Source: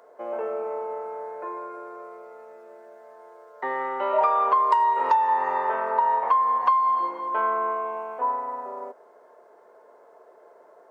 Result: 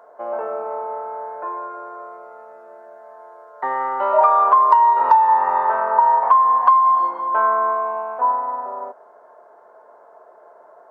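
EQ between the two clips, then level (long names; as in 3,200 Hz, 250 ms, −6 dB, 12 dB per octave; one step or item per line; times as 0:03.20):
low-shelf EQ 300 Hz +8 dB
flat-topped bell 1,000 Hz +10 dB
−3.5 dB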